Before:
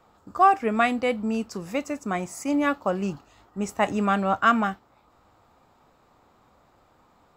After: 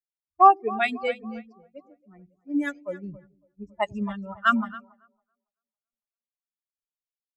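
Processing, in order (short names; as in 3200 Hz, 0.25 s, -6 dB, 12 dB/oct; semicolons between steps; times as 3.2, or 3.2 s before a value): per-bin expansion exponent 3; split-band echo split 360 Hz, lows 98 ms, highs 0.278 s, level -14 dB; low-pass opened by the level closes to 500 Hz, open at -23 dBFS; three-band expander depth 70%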